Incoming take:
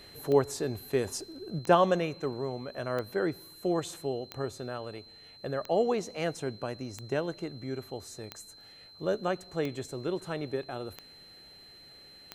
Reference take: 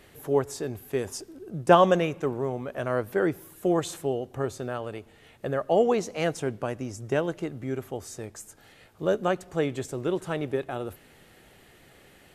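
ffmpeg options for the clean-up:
ffmpeg -i in.wav -af "adeclick=threshold=4,bandreject=frequency=4100:width=30,asetnsamples=nb_out_samples=441:pad=0,asendcmd='1.59 volume volume 5dB',volume=0dB" out.wav

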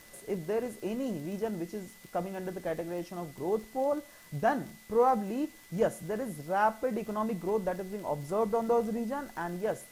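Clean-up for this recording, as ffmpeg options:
ffmpeg -i in.wav -af "adeclick=threshold=4,bandreject=frequency=2000:width=30,afftdn=noise_reduction=22:noise_floor=-53" out.wav

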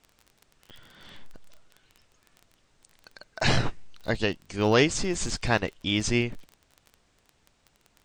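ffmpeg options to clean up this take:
ffmpeg -i in.wav -af "adeclick=threshold=4,agate=range=-21dB:threshold=-59dB" out.wav

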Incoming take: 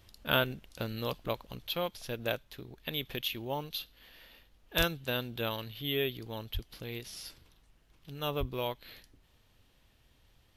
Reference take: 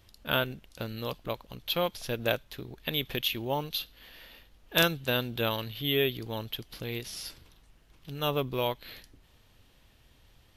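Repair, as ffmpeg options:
ffmpeg -i in.wav -filter_complex "[0:a]asplit=3[link_01][link_02][link_03];[link_01]afade=type=out:start_time=4.77:duration=0.02[link_04];[link_02]highpass=frequency=140:width=0.5412,highpass=frequency=140:width=1.3066,afade=type=in:start_time=4.77:duration=0.02,afade=type=out:start_time=4.89:duration=0.02[link_05];[link_03]afade=type=in:start_time=4.89:duration=0.02[link_06];[link_04][link_05][link_06]amix=inputs=3:normalize=0,asplit=3[link_07][link_08][link_09];[link_07]afade=type=out:start_time=6.53:duration=0.02[link_10];[link_08]highpass=frequency=140:width=0.5412,highpass=frequency=140:width=1.3066,afade=type=in:start_time=6.53:duration=0.02,afade=type=out:start_time=6.65:duration=0.02[link_11];[link_09]afade=type=in:start_time=6.65:duration=0.02[link_12];[link_10][link_11][link_12]amix=inputs=3:normalize=0,asplit=3[link_13][link_14][link_15];[link_13]afade=type=out:start_time=8.39:duration=0.02[link_16];[link_14]highpass=frequency=140:width=0.5412,highpass=frequency=140:width=1.3066,afade=type=in:start_time=8.39:duration=0.02,afade=type=out:start_time=8.51:duration=0.02[link_17];[link_15]afade=type=in:start_time=8.51:duration=0.02[link_18];[link_16][link_17][link_18]amix=inputs=3:normalize=0,asetnsamples=nb_out_samples=441:pad=0,asendcmd='1.67 volume volume 5dB',volume=0dB" out.wav

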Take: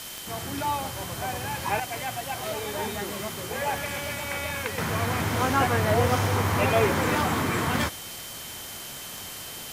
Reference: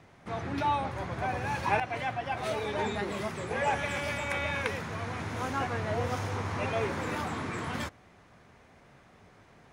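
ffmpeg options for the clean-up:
ffmpeg -i in.wav -af "adeclick=threshold=4,bandreject=frequency=3100:width=30,afwtdn=0.013,asetnsamples=nb_out_samples=441:pad=0,asendcmd='4.78 volume volume -9dB',volume=0dB" out.wav

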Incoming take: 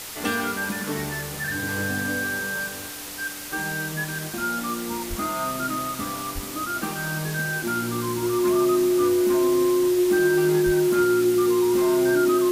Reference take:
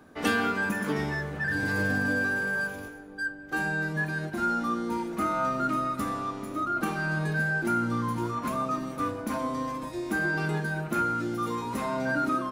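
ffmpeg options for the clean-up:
ffmpeg -i in.wav -filter_complex "[0:a]adeclick=threshold=4,bandreject=frequency=360:width=30,asplit=3[link_01][link_02][link_03];[link_01]afade=type=out:start_time=5.09:duration=0.02[link_04];[link_02]highpass=frequency=140:width=0.5412,highpass=frequency=140:width=1.3066,afade=type=in:start_time=5.09:duration=0.02,afade=type=out:start_time=5.21:duration=0.02[link_05];[link_03]afade=type=in:start_time=5.21:duration=0.02[link_06];[link_04][link_05][link_06]amix=inputs=3:normalize=0,asplit=3[link_07][link_08][link_09];[link_07]afade=type=out:start_time=6.34:duration=0.02[link_10];[link_08]highpass=frequency=140:width=0.5412,highpass=frequency=140:width=1.3066,afade=type=in:start_time=6.34:duration=0.02,afade=type=out:start_time=6.46:duration=0.02[link_11];[link_09]afade=type=in:start_time=6.46:duration=0.02[link_12];[link_10][link_11][link_12]amix=inputs=3:normalize=0,asplit=3[link_13][link_14][link_15];[link_13]afade=type=out:start_time=10.65:duration=0.02[link_16];[link_14]highpass=frequency=140:width=0.5412,highpass=frequency=140:width=1.3066,afade=type=in:start_time=10.65:duration=0.02,afade=type=out:start_time=10.77:duration=0.02[link_17];[link_15]afade=type=in:start_time=10.77:duration=0.02[link_18];[link_16][link_17][link_18]amix=inputs=3:normalize=0,afwtdn=0.018" out.wav

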